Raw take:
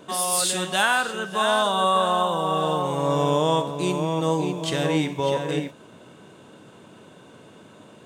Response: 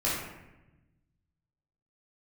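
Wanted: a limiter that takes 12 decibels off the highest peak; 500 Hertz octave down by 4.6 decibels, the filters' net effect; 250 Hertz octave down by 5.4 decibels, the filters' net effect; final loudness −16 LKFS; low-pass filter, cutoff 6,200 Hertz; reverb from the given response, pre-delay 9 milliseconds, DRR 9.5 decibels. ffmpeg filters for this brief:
-filter_complex "[0:a]lowpass=6200,equalizer=frequency=250:width_type=o:gain=-7,equalizer=frequency=500:width_type=o:gain=-4,alimiter=limit=-21.5dB:level=0:latency=1,asplit=2[link_01][link_02];[1:a]atrim=start_sample=2205,adelay=9[link_03];[link_02][link_03]afir=irnorm=-1:irlink=0,volume=-19.5dB[link_04];[link_01][link_04]amix=inputs=2:normalize=0,volume=14dB"

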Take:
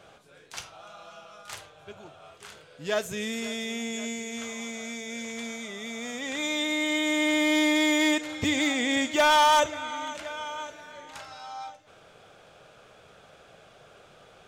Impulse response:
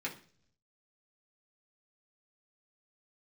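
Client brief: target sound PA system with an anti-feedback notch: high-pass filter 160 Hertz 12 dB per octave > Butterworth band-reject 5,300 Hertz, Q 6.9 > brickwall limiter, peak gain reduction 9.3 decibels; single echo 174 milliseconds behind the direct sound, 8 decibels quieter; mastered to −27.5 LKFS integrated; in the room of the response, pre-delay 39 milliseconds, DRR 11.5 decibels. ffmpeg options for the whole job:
-filter_complex "[0:a]aecho=1:1:174:0.398,asplit=2[link_01][link_02];[1:a]atrim=start_sample=2205,adelay=39[link_03];[link_02][link_03]afir=irnorm=-1:irlink=0,volume=-14dB[link_04];[link_01][link_04]amix=inputs=2:normalize=0,highpass=160,asuperstop=centerf=5300:order=8:qfactor=6.9,volume=2dB,alimiter=limit=-17dB:level=0:latency=1"

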